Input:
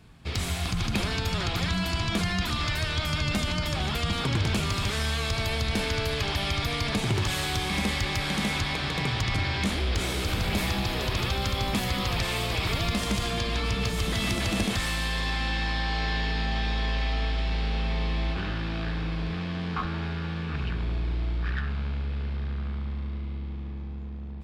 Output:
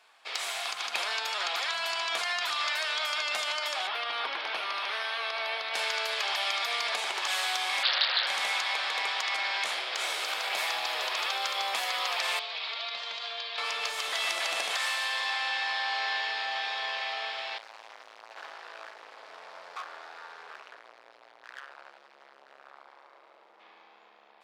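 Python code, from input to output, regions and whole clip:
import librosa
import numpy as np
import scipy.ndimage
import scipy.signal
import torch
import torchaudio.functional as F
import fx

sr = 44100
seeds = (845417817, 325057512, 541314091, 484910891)

y = fx.chain(x, sr, fx.moving_average(points=6),
    fx.peak_eq(hz=290.0, db=4.5, octaves=0.36), at=(3.87, 5.74))
y = fx.chain(y, sr, fx.freq_invert(carrier_hz=3900),
    fx.doppler_dist(depth_ms=0.44), at=(7.83, 8.27))
y = fx.chain(y, sr, fx.ladder_lowpass(hz=4700.0, resonance_pct=50),
    fx.comb(ms=4.4, depth=0.36), at=(12.39, 13.58))
y = fx.chain(y, sr, fx.peak_eq(hz=3000.0, db=-10.5, octaves=1.2),
    fx.clip_hard(threshold_db=-35.0), at=(17.58, 23.6))
y = scipy.signal.sosfilt(scipy.signal.butter(4, 640.0, 'highpass', fs=sr, output='sos'), y)
y = fx.high_shelf(y, sr, hz=10000.0, db=-8.5)
y = y * 10.0 ** (1.5 / 20.0)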